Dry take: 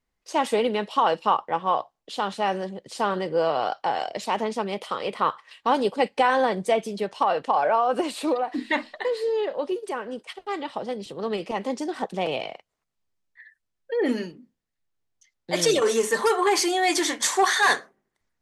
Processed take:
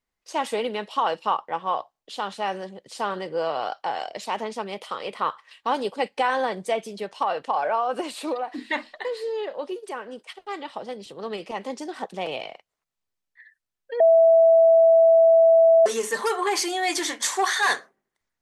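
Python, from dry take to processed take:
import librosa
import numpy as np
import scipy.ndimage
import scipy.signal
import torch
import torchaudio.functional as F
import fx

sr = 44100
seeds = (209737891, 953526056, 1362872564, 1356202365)

y = fx.highpass(x, sr, hz=110.0, slope=12, at=(16.56, 17.72))
y = fx.edit(y, sr, fx.bleep(start_s=14.0, length_s=1.86, hz=658.0, db=-8.5), tone=tone)
y = fx.low_shelf(y, sr, hz=390.0, db=-6.0)
y = F.gain(torch.from_numpy(y), -1.5).numpy()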